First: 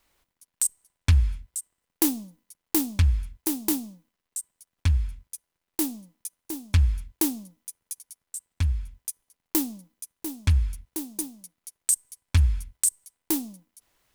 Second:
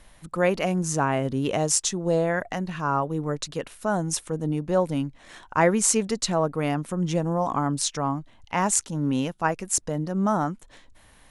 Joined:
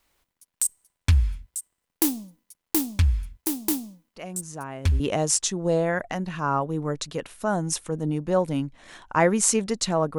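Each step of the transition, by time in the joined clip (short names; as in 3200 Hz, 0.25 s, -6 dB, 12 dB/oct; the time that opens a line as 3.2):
first
4.16 add second from 0.57 s 0.84 s -12 dB
5 switch to second from 1.41 s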